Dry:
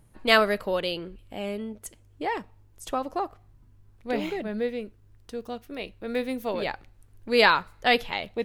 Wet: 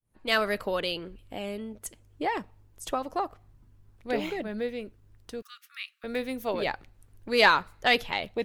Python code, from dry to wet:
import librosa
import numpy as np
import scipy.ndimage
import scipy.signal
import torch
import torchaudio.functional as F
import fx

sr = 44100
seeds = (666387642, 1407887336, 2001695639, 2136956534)

p1 = fx.fade_in_head(x, sr, length_s=0.54)
p2 = fx.hpss(p1, sr, part='percussive', gain_db=5)
p3 = 10.0 ** (-14.5 / 20.0) * np.tanh(p2 / 10.0 ** (-14.5 / 20.0))
p4 = p2 + F.gain(torch.from_numpy(p3), -7.0).numpy()
p5 = fx.brickwall_highpass(p4, sr, low_hz=1100.0, at=(5.42, 6.04))
y = F.gain(torch.from_numpy(p5), -6.5).numpy()